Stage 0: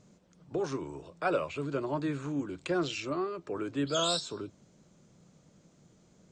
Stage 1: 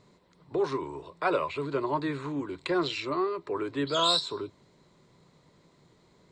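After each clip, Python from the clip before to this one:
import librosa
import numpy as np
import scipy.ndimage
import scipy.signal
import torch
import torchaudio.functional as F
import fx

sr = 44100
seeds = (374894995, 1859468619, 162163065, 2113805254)

y = fx.graphic_eq_31(x, sr, hz=(200, 400, 1000, 2000, 4000, 6300), db=(-6, 6, 12, 9, 10, -9))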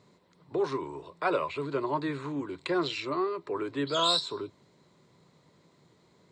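y = scipy.signal.sosfilt(scipy.signal.butter(2, 78.0, 'highpass', fs=sr, output='sos'), x)
y = y * 10.0 ** (-1.0 / 20.0)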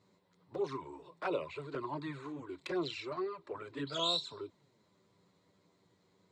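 y = fx.env_flanger(x, sr, rest_ms=11.0, full_db=-23.5)
y = y * 10.0 ** (-5.0 / 20.0)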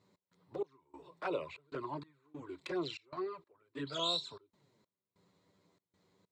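y = fx.step_gate(x, sr, bpm=96, pattern='x.xx..xxx', floor_db=-24.0, edge_ms=4.5)
y = y * 10.0 ** (-1.5 / 20.0)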